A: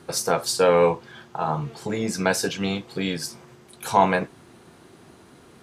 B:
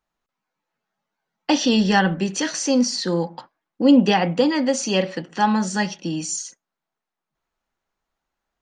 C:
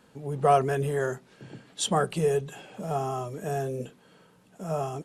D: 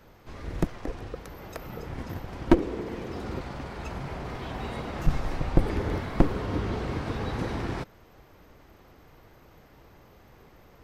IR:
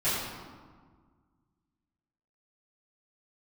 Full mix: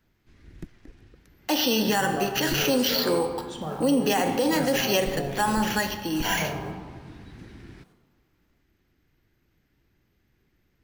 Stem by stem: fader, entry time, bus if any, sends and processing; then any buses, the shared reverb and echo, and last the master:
−17.0 dB, 2.30 s, send −10 dB, floating-point word with a short mantissa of 2 bits
0.0 dB, 0.00 s, send −19 dB, high-pass filter 320 Hz 12 dB per octave; decimation without filtering 5×
−4.0 dB, 1.70 s, send −12.5 dB, low-pass filter 1,200 Hz 6 dB per octave; downward compressor, threshold −30 dBFS, peak gain reduction 12 dB; log-companded quantiser 6 bits
−13.0 dB, 0.00 s, no send, flat-topped bell 750 Hz −11.5 dB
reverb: on, RT60 1.6 s, pre-delay 4 ms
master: brickwall limiter −14 dBFS, peak gain reduction 9.5 dB

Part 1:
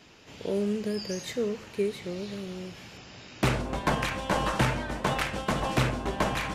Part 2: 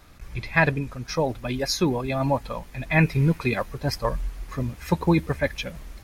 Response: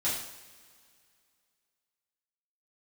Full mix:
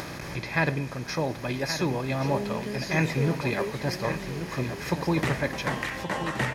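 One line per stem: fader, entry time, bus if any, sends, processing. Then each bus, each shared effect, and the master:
−4.5 dB, 1.80 s, no send, echo send −11.5 dB, parametric band 1,900 Hz +12 dB 0.21 octaves
−8.0 dB, 0.00 s, send −22 dB, echo send −9 dB, compressor on every frequency bin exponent 0.6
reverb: on, pre-delay 3 ms
echo: single-tap delay 1,124 ms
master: high-pass filter 87 Hz 12 dB per octave; upward compression, threshold −29 dBFS

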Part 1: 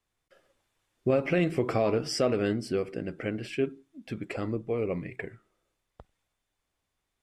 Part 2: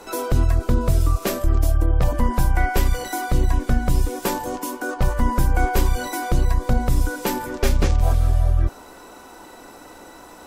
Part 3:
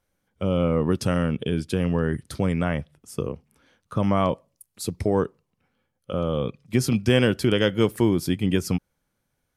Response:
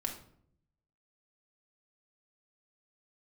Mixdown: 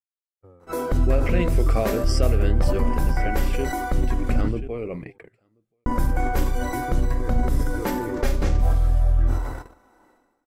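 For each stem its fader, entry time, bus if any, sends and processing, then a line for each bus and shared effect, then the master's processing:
−1.5 dB, 0.00 s, no bus, no send, echo send −17 dB, high-shelf EQ 8,200 Hz +8 dB
−3.5 dB, 0.60 s, muted 0:04.41–0:05.86, bus A, send −5.5 dB, no echo send, no processing
−3.5 dB, 0.00 s, bus A, no send, no echo send, comb filter 2.5 ms, depth 96%; brickwall limiter −14 dBFS, peak gain reduction 8 dB; downward compressor 2 to 1, threshold −30 dBFS, peak gain reduction 7 dB; automatic ducking −14 dB, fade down 1.70 s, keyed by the first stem
bus A: 0.0 dB, linear-phase brick-wall low-pass 2,300 Hz; downward compressor, threshold −26 dBFS, peak gain reduction 10.5 dB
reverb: on, RT60 0.65 s, pre-delay 4 ms
echo: single-tap delay 1,033 ms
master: noise gate −33 dBFS, range −55 dB; level that may fall only so fast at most 50 dB per second

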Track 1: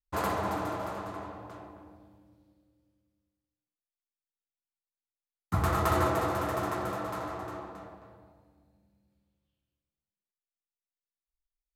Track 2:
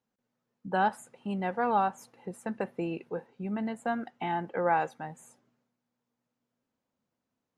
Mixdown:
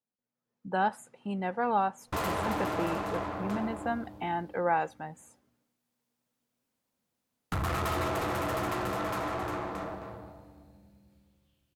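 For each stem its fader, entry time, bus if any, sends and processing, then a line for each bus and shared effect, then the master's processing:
+3.0 dB, 2.00 s, no send, hum removal 54.59 Hz, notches 34; downward compressor 2 to 1, threshold −44 dBFS, peak gain reduction 11.5 dB; tube saturation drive 42 dB, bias 0.7
−12.5 dB, 0.00 s, no send, no processing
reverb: not used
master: automatic gain control gain up to 11.5 dB

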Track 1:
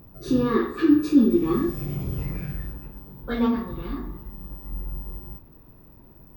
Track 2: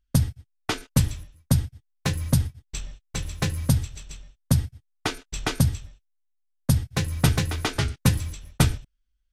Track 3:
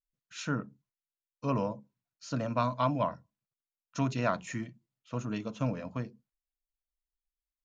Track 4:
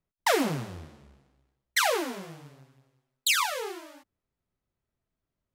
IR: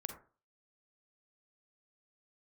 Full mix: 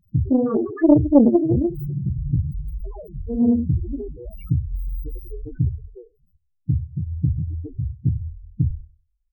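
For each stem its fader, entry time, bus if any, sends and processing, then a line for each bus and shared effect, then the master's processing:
+2.5 dB, 0.00 s, send −7.5 dB, no echo send, noise gate −45 dBFS, range −17 dB
+1.0 dB, 0.00 s, no send, echo send −18 dB, no processing
−5.0 dB, 0.00 s, send −22.5 dB, no echo send, lower of the sound and its delayed copy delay 2 ms; thirty-one-band graphic EQ 125 Hz −9 dB, 400 Hz +10 dB, 1,000 Hz −7 dB, 1,600 Hz −9 dB; phaser swept by the level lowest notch 590 Hz, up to 3,200 Hz, full sweep at −29.5 dBFS
−11.0 dB, 1.10 s, no send, no echo send, no processing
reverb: on, RT60 0.40 s, pre-delay 37 ms
echo: repeating echo 96 ms, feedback 26%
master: spectral peaks only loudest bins 4; highs frequency-modulated by the lows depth 0.58 ms

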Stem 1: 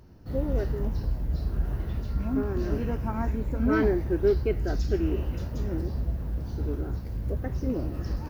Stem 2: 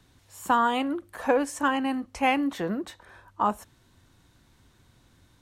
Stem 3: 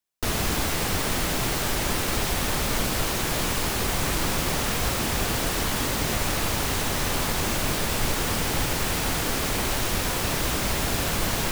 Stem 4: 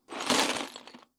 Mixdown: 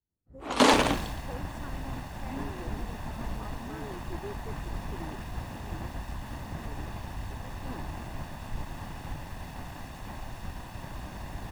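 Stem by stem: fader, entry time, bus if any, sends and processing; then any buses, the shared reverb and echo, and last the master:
−10.5 dB, 0.00 s, no send, downward compressor, threshold −28 dBFS, peak gain reduction 10.5 dB
−14.5 dB, 0.00 s, no send, downward compressor, threshold −26 dBFS, peak gain reduction 9 dB
−8.0 dB, 0.50 s, no send, lower of the sound and its delayed copy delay 1.1 ms; high-shelf EQ 2,900 Hz −8 dB
0.0 dB, 0.30 s, no send, no processing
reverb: not used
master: high-shelf EQ 2,200 Hz −10.5 dB; multiband upward and downward expander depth 100%

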